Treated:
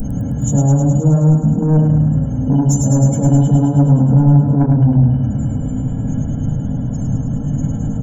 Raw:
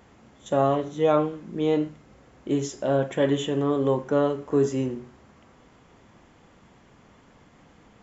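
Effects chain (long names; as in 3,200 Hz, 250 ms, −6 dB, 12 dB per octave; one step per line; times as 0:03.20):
compressor on every frequency bin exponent 0.4
rectangular room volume 43 cubic metres, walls mixed, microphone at 1.9 metres
gate on every frequency bin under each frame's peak −25 dB strong
drawn EQ curve 240 Hz 0 dB, 440 Hz −20 dB, 640 Hz −27 dB, 3,300 Hz −27 dB, 8,200 Hz +12 dB
soft clipping −11.5 dBFS, distortion −17 dB
low-shelf EQ 120 Hz +7 dB
comb filter 1.3 ms, depth 85%
feedback echo with a high-pass in the loop 105 ms, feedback 75%, high-pass 700 Hz, level −4 dB
level +4 dB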